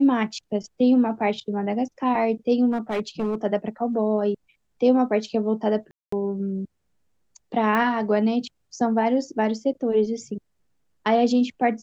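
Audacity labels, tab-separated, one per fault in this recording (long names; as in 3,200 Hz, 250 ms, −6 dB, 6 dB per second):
2.710000	3.350000	clipping −20.5 dBFS
5.910000	6.120000	drop-out 214 ms
7.750000	7.750000	click −13 dBFS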